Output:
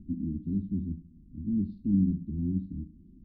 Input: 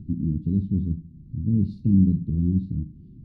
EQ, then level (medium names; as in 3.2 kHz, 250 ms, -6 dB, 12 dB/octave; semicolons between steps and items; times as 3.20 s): distance through air 320 m; static phaser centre 470 Hz, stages 6; -3.0 dB